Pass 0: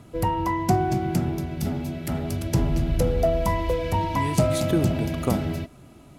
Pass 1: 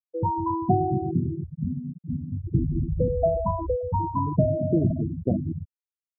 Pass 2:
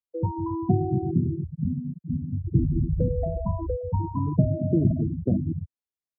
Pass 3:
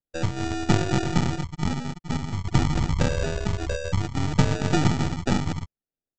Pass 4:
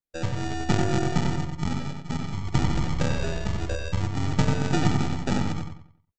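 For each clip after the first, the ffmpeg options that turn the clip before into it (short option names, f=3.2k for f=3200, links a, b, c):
-af "highpass=61,highshelf=f=4.5k:g=-8,afftfilt=real='re*gte(hypot(re,im),0.224)':imag='im*gte(hypot(re,im),0.224)':win_size=1024:overlap=0.75"
-filter_complex "[0:a]tiltshelf=f=970:g=5,acrossover=split=100|420[a][b][c];[c]acompressor=threshold=-32dB:ratio=6[d];[a][b][d]amix=inputs=3:normalize=0,volume=-3dB"
-af "aeval=exprs='if(lt(val(0),0),0.251*val(0),val(0))':c=same,aresample=16000,acrusher=samples=15:mix=1:aa=0.000001,aresample=44100,volume=4dB"
-filter_complex "[0:a]asplit=2[a][b];[b]adelay=92,lowpass=f=4.1k:p=1,volume=-4dB,asplit=2[c][d];[d]adelay=92,lowpass=f=4.1k:p=1,volume=0.36,asplit=2[e][f];[f]adelay=92,lowpass=f=4.1k:p=1,volume=0.36,asplit=2[g][h];[h]adelay=92,lowpass=f=4.1k:p=1,volume=0.36,asplit=2[i][j];[j]adelay=92,lowpass=f=4.1k:p=1,volume=0.36[k];[a][c][e][g][i][k]amix=inputs=6:normalize=0,volume=-3dB"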